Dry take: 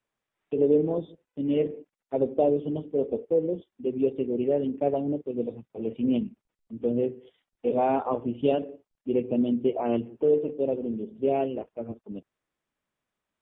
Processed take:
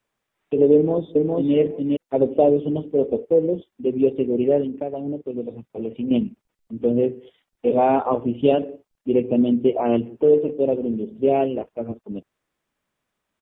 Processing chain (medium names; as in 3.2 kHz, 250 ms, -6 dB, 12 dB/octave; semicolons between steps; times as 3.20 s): 0.74–1.55 s: echo throw 410 ms, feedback 10%, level -2 dB; 4.61–6.11 s: compression 6:1, threshold -31 dBFS, peak gain reduction 12 dB; trim +6.5 dB